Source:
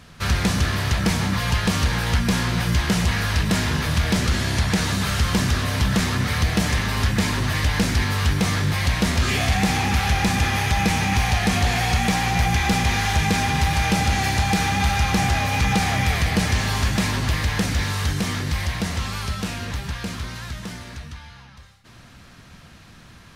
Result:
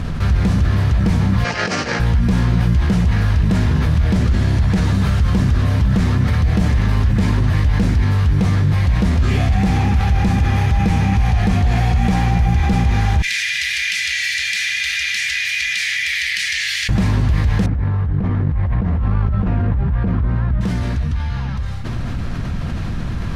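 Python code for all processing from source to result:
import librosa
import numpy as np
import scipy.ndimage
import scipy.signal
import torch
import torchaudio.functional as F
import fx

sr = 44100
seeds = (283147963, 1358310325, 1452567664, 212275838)

y = fx.chain(x, sr, fx.over_compress(threshold_db=-24.0, ratio=-0.5),
    fx.cabinet(low_hz=430.0, low_slope=12, high_hz=7300.0, hz=(1000.0, 3500.0, 5300.0), db=(-10, -8, 4)), at=(1.44, 2.0))
y = fx.chain(y, sr, fx.ellip_highpass(hz=1900.0, order=4, stop_db=50),
    fx.high_shelf(hz=11000.0, db=-8.0), at=(13.22, 16.89))
y = fx.chain(y, sr, fx.lowpass(hz=1400.0, slope=12),
    fx.over_compress(threshold_db=-30.0, ratio=-1.0), at=(17.66, 20.61))
y = fx.tilt_eq(y, sr, slope=-3.0)
y = fx.env_flatten(y, sr, amount_pct=70)
y = y * 10.0 ** (-7.5 / 20.0)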